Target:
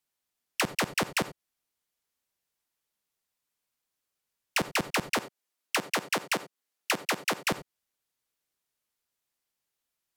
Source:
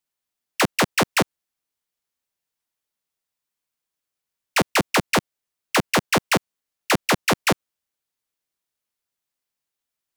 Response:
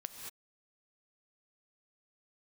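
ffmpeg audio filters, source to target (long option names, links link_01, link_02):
-filter_complex "[0:a]asettb=1/sr,asplit=3[link_01][link_02][link_03];[link_01]atrim=end=5.184[link_04];[link_02]atrim=start=5.18:end=7.38,asetpts=PTS-STARTPTS,afade=type=in:duration=0.004:curve=qsin,afade=type=out:start_time=2.196:duration=0.004:curve=qsin,highpass=220[link_05];[link_03]atrim=start=7.376[link_06];[link_04][link_05]acrossfade=duration=0.004:curve1=hsin:curve2=qsin[link_07];[link_07][link_06]acrossfade=duration=0.004:curve1=qsin:curve2=hsin[link_08];[1:a]atrim=start_sample=2205,atrim=end_sample=3087,asetrate=32193,aresample=44100[link_09];[link_08][link_09]afir=irnorm=-1:irlink=0,acompressor=threshold=-29dB:ratio=6,volume=3dB"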